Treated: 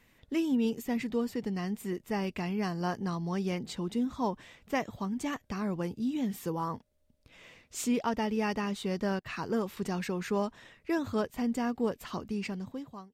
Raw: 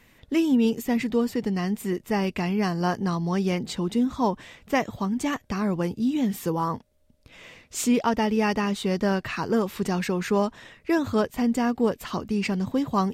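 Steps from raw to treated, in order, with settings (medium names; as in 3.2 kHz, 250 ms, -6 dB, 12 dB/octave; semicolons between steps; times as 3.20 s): fade out at the end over 0.88 s; 9.19–9.77 s: gate -34 dBFS, range -17 dB; trim -7.5 dB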